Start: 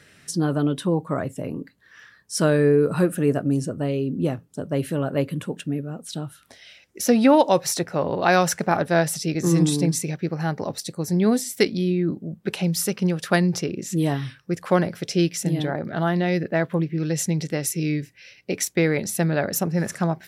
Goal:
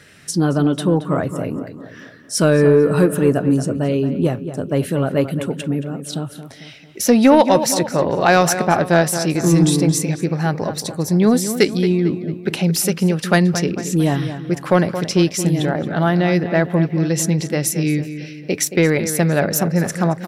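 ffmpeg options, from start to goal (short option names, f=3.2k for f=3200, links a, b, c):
-filter_complex "[0:a]asplit=2[a][b];[b]adelay=224,lowpass=f=3k:p=1,volume=-11dB,asplit=2[c][d];[d]adelay=224,lowpass=f=3k:p=1,volume=0.5,asplit=2[e][f];[f]adelay=224,lowpass=f=3k:p=1,volume=0.5,asplit=2[g][h];[h]adelay=224,lowpass=f=3k:p=1,volume=0.5,asplit=2[i][j];[j]adelay=224,lowpass=f=3k:p=1,volume=0.5[k];[a][c][e][g][i][k]amix=inputs=6:normalize=0,acontrast=44"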